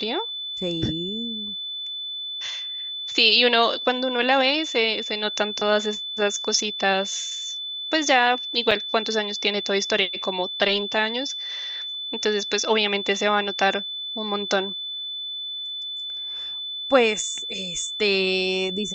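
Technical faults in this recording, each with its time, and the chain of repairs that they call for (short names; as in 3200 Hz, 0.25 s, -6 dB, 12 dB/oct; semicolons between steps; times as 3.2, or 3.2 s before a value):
tone 3500 Hz -29 dBFS
8.71–8.72 gap 5.1 ms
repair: notch 3500 Hz, Q 30; interpolate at 8.71, 5.1 ms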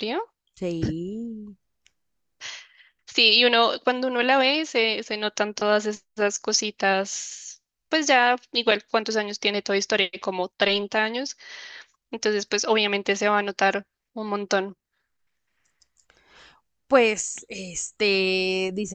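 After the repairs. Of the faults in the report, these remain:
none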